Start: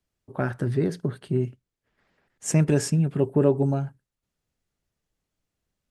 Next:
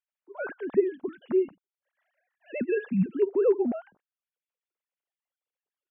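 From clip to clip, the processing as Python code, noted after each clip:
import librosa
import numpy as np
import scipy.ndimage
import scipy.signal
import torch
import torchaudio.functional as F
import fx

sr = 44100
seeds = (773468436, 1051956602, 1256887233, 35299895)

y = fx.sine_speech(x, sr)
y = y * 10.0 ** (-3.5 / 20.0)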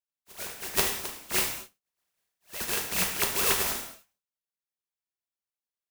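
y = fx.spec_flatten(x, sr, power=0.11)
y = fx.rev_gated(y, sr, seeds[0], gate_ms=260, shape='falling', drr_db=0.5)
y = y * 10.0 ** (-5.0 / 20.0)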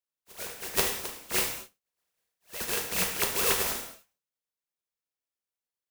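y = fx.peak_eq(x, sr, hz=490.0, db=6.0, octaves=0.27)
y = y * 10.0 ** (-1.0 / 20.0)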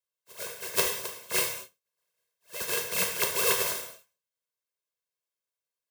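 y = scipy.signal.sosfilt(scipy.signal.butter(2, 110.0, 'highpass', fs=sr, output='sos'), x)
y = y + 0.74 * np.pad(y, (int(1.9 * sr / 1000.0), 0))[:len(y)]
y = y * 10.0 ** (-1.5 / 20.0)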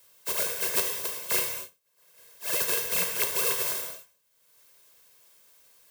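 y = fx.high_shelf(x, sr, hz=11000.0, db=6.0)
y = fx.band_squash(y, sr, depth_pct=100)
y = y * 10.0 ** (-1.5 / 20.0)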